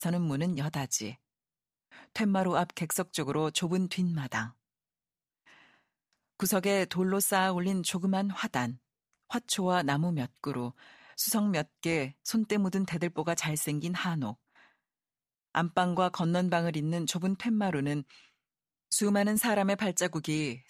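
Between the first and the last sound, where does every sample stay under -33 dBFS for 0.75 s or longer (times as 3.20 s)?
1.11–2.16 s
4.46–6.40 s
14.32–15.55 s
18.01–18.92 s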